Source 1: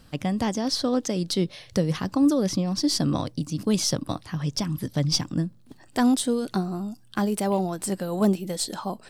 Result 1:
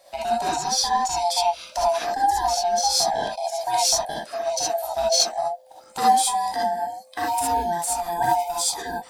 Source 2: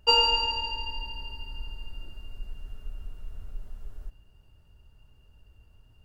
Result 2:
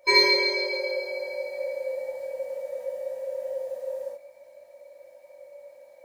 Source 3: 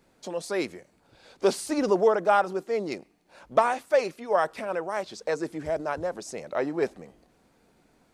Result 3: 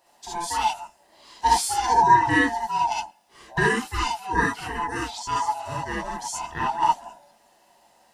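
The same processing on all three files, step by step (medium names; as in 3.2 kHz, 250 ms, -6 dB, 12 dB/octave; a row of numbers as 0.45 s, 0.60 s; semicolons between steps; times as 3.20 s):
split-band scrambler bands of 500 Hz; tone controls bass -11 dB, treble +5 dB; gated-style reverb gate 90 ms rising, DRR -4.5 dB; peak normalisation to -6 dBFS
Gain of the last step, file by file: -3.5 dB, 0.0 dB, -1.0 dB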